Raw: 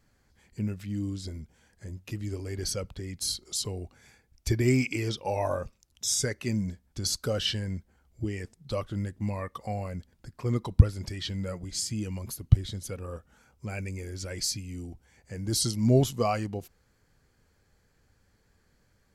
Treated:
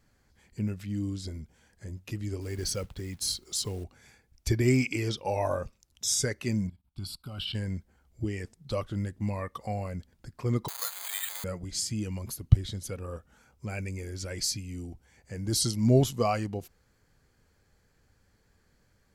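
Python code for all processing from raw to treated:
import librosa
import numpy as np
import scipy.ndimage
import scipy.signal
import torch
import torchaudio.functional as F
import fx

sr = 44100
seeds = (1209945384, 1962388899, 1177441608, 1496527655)

y = fx.chain(x, sr, fx.peak_eq(hz=640.0, db=-4.0, octaves=0.25),
    fx.quant_companded(bits=6), at=(2.41, 3.84))
y = fx.chain(y, sr, fx.level_steps(step_db=17),
    fx.fixed_phaser(hz=1800.0, stages=6), at=(6.67, 7.55))
y = fx.chain(y, sr, fx.zero_step(step_db=-31.0),
    fx.highpass(hz=820.0, slope=24),
    fx.resample_bad(factor=8, down='filtered', up='zero_stuff'), at=(10.68, 11.44))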